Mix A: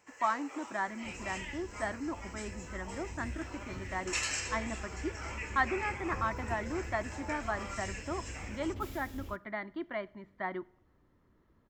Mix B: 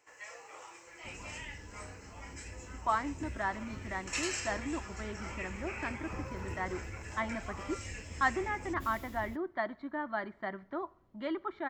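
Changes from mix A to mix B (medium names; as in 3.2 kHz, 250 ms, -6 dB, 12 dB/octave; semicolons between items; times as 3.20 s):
speech: entry +2.65 s; first sound: send off; second sound: send off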